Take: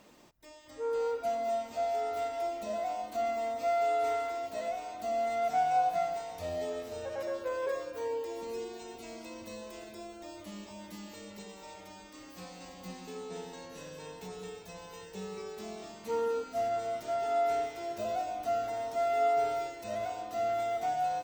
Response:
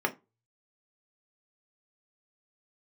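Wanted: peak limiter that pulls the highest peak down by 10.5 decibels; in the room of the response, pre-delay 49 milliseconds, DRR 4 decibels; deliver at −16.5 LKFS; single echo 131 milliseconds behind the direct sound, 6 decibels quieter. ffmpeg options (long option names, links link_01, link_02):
-filter_complex "[0:a]alimiter=level_in=6dB:limit=-24dB:level=0:latency=1,volume=-6dB,aecho=1:1:131:0.501,asplit=2[link_01][link_02];[1:a]atrim=start_sample=2205,adelay=49[link_03];[link_02][link_03]afir=irnorm=-1:irlink=0,volume=-13.5dB[link_04];[link_01][link_04]amix=inputs=2:normalize=0,volume=21dB"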